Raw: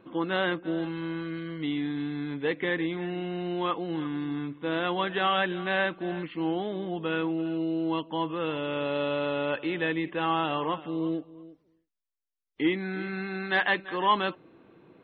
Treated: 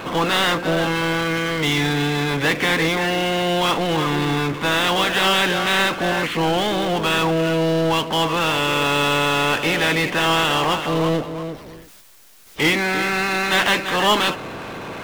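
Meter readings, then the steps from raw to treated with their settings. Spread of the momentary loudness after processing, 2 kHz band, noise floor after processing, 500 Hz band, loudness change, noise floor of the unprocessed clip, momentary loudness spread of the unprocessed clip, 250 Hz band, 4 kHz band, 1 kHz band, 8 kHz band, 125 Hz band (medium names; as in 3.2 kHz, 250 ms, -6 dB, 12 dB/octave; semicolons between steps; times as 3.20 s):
4 LU, +12.0 dB, -42 dBFS, +9.0 dB, +10.5 dB, -75 dBFS, 8 LU, +6.5 dB, +16.5 dB, +10.0 dB, no reading, +12.5 dB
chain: spectral peaks clipped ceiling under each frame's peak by 16 dB; power-law waveshaper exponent 0.5; trim +2 dB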